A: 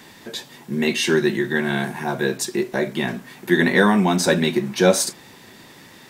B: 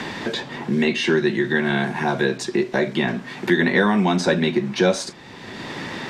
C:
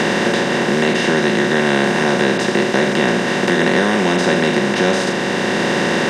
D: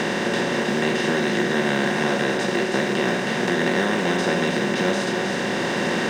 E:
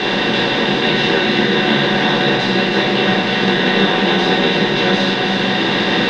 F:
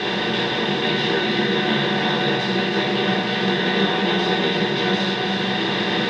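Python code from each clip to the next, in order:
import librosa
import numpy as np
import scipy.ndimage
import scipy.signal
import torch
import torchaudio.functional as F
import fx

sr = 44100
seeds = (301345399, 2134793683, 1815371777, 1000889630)

y1 = scipy.signal.sosfilt(scipy.signal.butter(2, 4900.0, 'lowpass', fs=sr, output='sos'), x)
y1 = fx.band_squash(y1, sr, depth_pct=70)
y2 = fx.bin_compress(y1, sr, power=0.2)
y2 = F.gain(torch.from_numpy(y2), -4.0).numpy()
y3 = fx.quant_companded(y2, sr, bits=8)
y3 = y3 + 10.0 ** (-5.5 / 20.0) * np.pad(y3, (int(319 * sr / 1000.0), 0))[:len(y3)]
y3 = F.gain(torch.from_numpy(y3), -7.0).numpy()
y4 = fx.lowpass_res(y3, sr, hz=3800.0, q=3.4)
y4 = fx.room_shoebox(y4, sr, seeds[0], volume_m3=400.0, walls='furnished', distance_m=3.8)
y4 = F.gain(torch.from_numpy(y4), -1.0).numpy()
y5 = fx.notch_comb(y4, sr, f0_hz=270.0)
y5 = F.gain(torch.from_numpy(y5), -4.5).numpy()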